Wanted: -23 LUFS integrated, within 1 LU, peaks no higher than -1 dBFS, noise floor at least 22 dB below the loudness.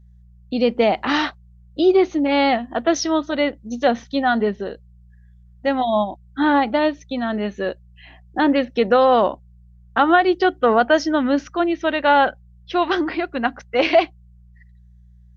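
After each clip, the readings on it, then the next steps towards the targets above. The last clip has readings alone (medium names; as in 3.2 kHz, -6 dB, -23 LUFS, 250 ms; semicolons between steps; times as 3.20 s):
hum 60 Hz; highest harmonic 180 Hz; hum level -46 dBFS; loudness -19.5 LUFS; peak level -3.5 dBFS; loudness target -23.0 LUFS
-> de-hum 60 Hz, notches 3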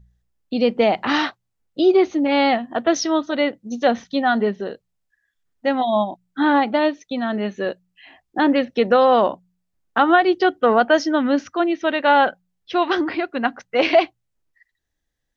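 hum not found; loudness -19.5 LUFS; peak level -3.5 dBFS; loudness target -23.0 LUFS
-> trim -3.5 dB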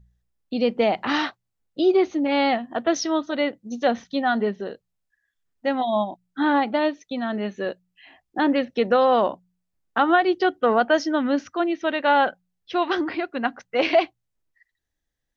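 loudness -23.0 LUFS; peak level -7.0 dBFS; noise floor -79 dBFS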